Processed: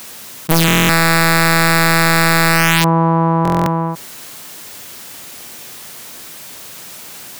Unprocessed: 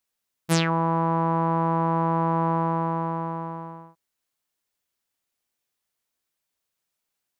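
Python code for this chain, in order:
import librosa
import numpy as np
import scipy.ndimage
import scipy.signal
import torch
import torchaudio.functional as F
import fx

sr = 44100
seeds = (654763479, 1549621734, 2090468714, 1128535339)

y = scipy.signal.sosfilt(scipy.signal.butter(2, 130.0, 'highpass', fs=sr, output='sos'), x)
y = fx.low_shelf(y, sr, hz=210.0, db=8.0)
y = (np.mod(10.0 ** (13.0 / 20.0) * y + 1.0, 2.0) - 1.0) / 10.0 ** (13.0 / 20.0)
y = fx.dynamic_eq(y, sr, hz=6300.0, q=0.94, threshold_db=-37.0, ratio=4.0, max_db=-4)
y = fx.buffer_glitch(y, sr, at_s=(0.66, 3.43), block=1024, repeats=9)
y = fx.env_flatten(y, sr, amount_pct=70)
y = y * librosa.db_to_amplitude(8.0)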